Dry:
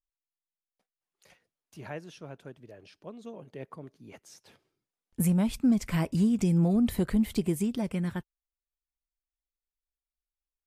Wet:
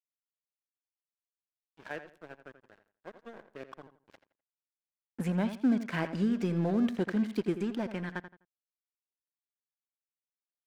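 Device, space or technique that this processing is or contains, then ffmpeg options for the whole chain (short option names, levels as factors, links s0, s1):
pocket radio on a weak battery: -filter_complex "[0:a]highpass=250,lowpass=3700,aeval=exprs='sgn(val(0))*max(abs(val(0))-0.00501,0)':c=same,equalizer=f=1600:t=o:w=0.23:g=9,asplit=2[s0][s1];[s1]adelay=84,lowpass=f=3600:p=1,volume=0.282,asplit=2[s2][s3];[s3]adelay=84,lowpass=f=3600:p=1,volume=0.27,asplit=2[s4][s5];[s5]adelay=84,lowpass=f=3600:p=1,volume=0.27[s6];[s0][s2][s4][s6]amix=inputs=4:normalize=0,volume=1.12"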